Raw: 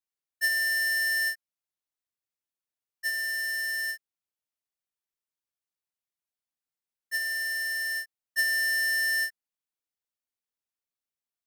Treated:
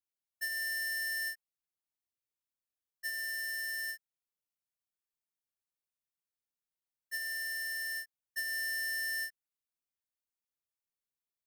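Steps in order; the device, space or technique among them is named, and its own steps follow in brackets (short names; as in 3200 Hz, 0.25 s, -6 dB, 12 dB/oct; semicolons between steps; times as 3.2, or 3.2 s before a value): ASMR close-microphone chain (low shelf 170 Hz +6 dB; compressor, threshold -29 dBFS, peak gain reduction 5.5 dB; high shelf 9400 Hz +5 dB); gain -7 dB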